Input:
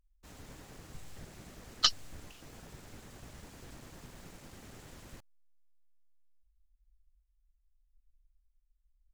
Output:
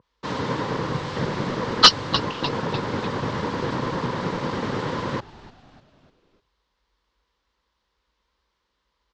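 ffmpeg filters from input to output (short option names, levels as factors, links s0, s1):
-filter_complex "[0:a]aeval=exprs='clip(val(0),-1,0.126)':c=same,highpass=f=110:w=0.5412,highpass=f=110:w=1.3066,equalizer=f=490:t=q:w=4:g=7,equalizer=f=700:t=q:w=4:g=-7,equalizer=f=1000:t=q:w=4:g=10,equalizer=f=2500:t=q:w=4:g=-5,lowpass=f=4600:w=0.5412,lowpass=f=4600:w=1.3066,asplit=2[s0][s1];[s1]asplit=4[s2][s3][s4][s5];[s2]adelay=299,afreqshift=-130,volume=0.112[s6];[s3]adelay=598,afreqshift=-260,volume=0.0562[s7];[s4]adelay=897,afreqshift=-390,volume=0.0282[s8];[s5]adelay=1196,afreqshift=-520,volume=0.014[s9];[s6][s7][s8][s9]amix=inputs=4:normalize=0[s10];[s0][s10]amix=inputs=2:normalize=0,apsyclip=22.4,adynamicequalizer=threshold=0.0224:dfrequency=2100:dqfactor=0.7:tfrequency=2100:tqfactor=0.7:attack=5:release=100:ratio=0.375:range=2:mode=cutabove:tftype=highshelf,volume=0.891"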